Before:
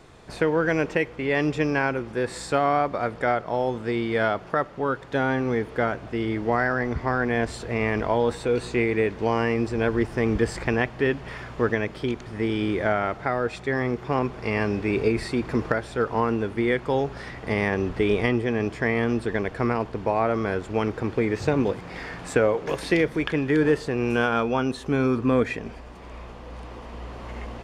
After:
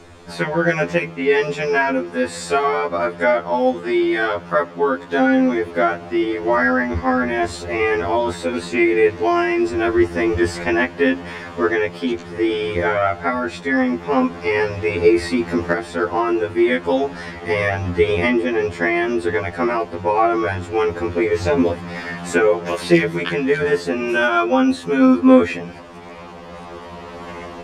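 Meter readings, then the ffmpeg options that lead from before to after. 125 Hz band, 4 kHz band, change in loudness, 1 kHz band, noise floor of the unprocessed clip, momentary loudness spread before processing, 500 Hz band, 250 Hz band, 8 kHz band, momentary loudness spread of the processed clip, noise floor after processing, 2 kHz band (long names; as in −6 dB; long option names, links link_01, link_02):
−0.5 dB, +6.5 dB, +6.0 dB, +6.0 dB, −41 dBFS, 7 LU, +6.0 dB, +7.0 dB, +6.5 dB, 9 LU, −36 dBFS, +6.5 dB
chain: -af "bandreject=frequency=54.63:width_type=h:width=4,bandreject=frequency=109.26:width_type=h:width=4,bandreject=frequency=163.89:width_type=h:width=4,bandreject=frequency=218.52:width_type=h:width=4,bandreject=frequency=273.15:width_type=h:width=4,bandreject=frequency=327.78:width_type=h:width=4,aeval=exprs='val(0)+0.00178*sin(2*PI*6500*n/s)':channel_layout=same,afftfilt=real='re*2*eq(mod(b,4),0)':imag='im*2*eq(mod(b,4),0)':win_size=2048:overlap=0.75,volume=9dB"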